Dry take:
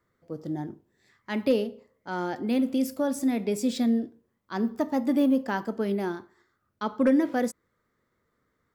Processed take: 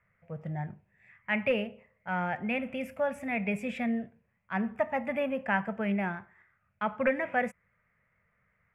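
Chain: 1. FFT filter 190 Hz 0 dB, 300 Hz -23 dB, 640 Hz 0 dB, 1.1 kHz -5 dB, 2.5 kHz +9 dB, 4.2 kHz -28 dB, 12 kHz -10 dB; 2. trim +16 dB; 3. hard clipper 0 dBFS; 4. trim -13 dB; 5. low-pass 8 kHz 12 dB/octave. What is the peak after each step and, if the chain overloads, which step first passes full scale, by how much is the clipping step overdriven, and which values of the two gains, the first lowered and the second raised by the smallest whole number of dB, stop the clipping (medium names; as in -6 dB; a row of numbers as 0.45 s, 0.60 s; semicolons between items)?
-18.0 dBFS, -2.0 dBFS, -2.0 dBFS, -15.0 dBFS, -15.0 dBFS; nothing clips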